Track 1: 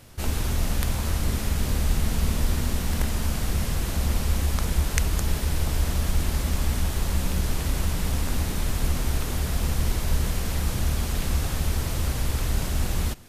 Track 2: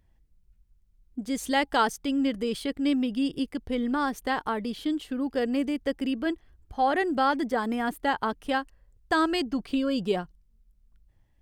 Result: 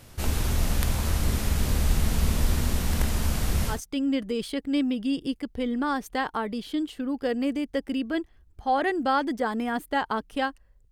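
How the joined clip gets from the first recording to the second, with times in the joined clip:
track 1
3.74 switch to track 2 from 1.86 s, crossfade 0.14 s

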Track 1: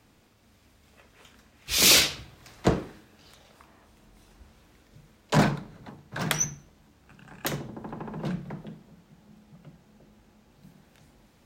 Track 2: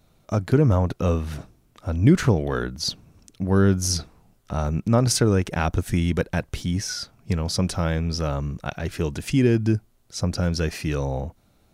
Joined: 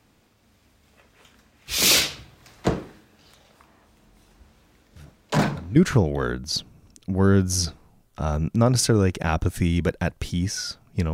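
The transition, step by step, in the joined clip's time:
track 1
4.96 add track 2 from 1.28 s 0.80 s -13 dB
5.76 switch to track 2 from 2.08 s

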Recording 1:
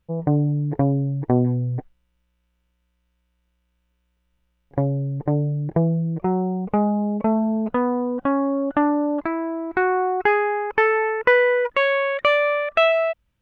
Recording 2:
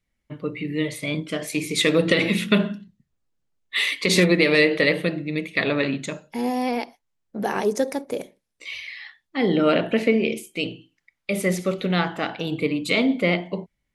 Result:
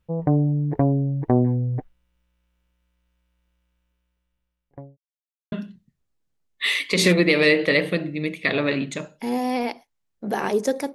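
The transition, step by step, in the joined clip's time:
recording 1
3.57–4.97 fade out linear
4.97–5.52 mute
5.52 switch to recording 2 from 2.64 s

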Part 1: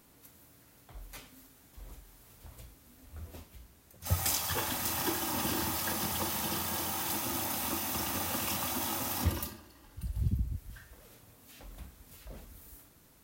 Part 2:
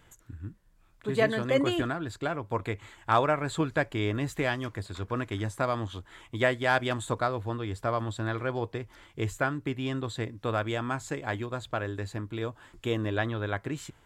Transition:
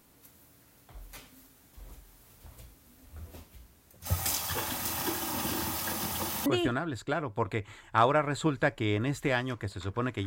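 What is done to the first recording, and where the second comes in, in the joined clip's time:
part 1
6.46 switch to part 2 from 1.6 s

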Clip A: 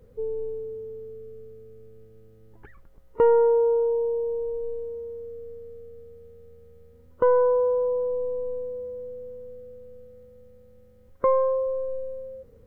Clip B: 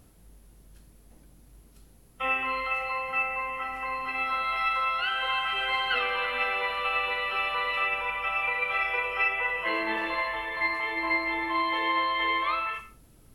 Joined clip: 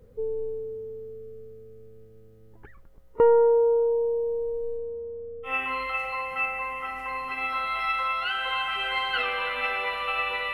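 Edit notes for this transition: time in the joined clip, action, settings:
clip A
4.77–5.56 LPF 1700 Hz -> 1100 Hz
5.49 switch to clip B from 2.26 s, crossfade 0.14 s

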